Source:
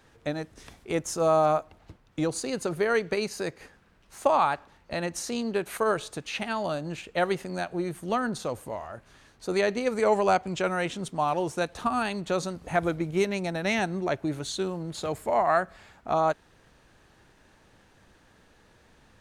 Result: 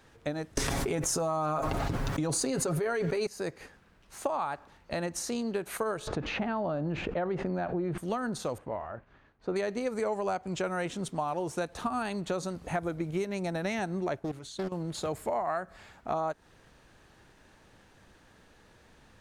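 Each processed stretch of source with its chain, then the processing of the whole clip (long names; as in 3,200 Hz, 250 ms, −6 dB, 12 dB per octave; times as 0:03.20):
0:00.57–0:03.27: comb filter 7.3 ms, depth 53% + envelope flattener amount 100%
0:06.07–0:07.98: head-to-tape spacing loss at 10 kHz 37 dB + envelope flattener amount 70%
0:08.58–0:09.56: low-pass filter 2,000 Hz + downward expander −54 dBFS
0:14.19–0:14.72: output level in coarse steps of 15 dB + highs frequency-modulated by the lows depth 0.62 ms
whole clip: dynamic equaliser 3,000 Hz, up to −5 dB, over −42 dBFS, Q 0.96; downward compressor, threshold −28 dBFS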